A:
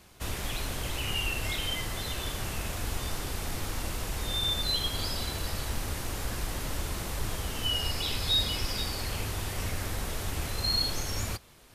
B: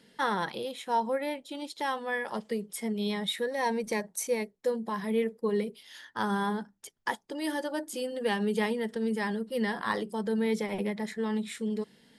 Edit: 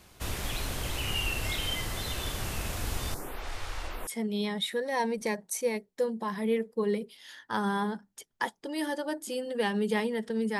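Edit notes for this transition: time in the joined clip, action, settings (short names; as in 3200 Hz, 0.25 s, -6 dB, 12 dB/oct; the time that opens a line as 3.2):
A
3.14–4.07 photocell phaser 0.51 Hz
4.07 switch to B from 2.73 s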